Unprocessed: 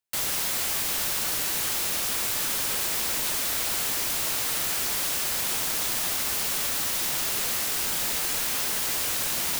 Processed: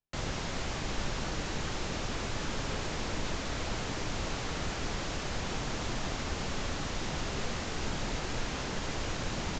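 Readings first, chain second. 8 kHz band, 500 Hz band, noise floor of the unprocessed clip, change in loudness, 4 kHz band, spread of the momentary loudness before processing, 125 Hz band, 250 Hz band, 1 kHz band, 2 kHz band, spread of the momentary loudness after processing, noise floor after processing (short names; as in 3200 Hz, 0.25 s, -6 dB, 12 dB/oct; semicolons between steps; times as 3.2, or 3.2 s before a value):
-16.0 dB, +1.0 dB, -28 dBFS, -11.5 dB, -9.5 dB, 0 LU, +8.0 dB, +4.5 dB, -2.5 dB, -6.0 dB, 0 LU, -37 dBFS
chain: tilt -3.5 dB/oct; notches 50/100 Hz; downsampling 16000 Hz; gain -2.5 dB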